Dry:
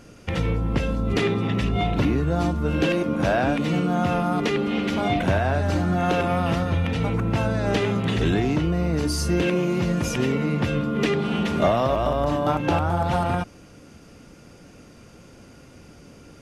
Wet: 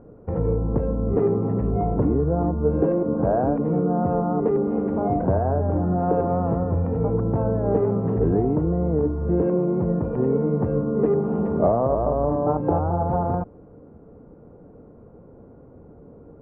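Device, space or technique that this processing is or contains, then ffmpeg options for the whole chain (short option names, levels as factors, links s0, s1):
under water: -af "lowpass=f=990:w=0.5412,lowpass=f=990:w=1.3066,equalizer=f=450:t=o:w=0.29:g=8"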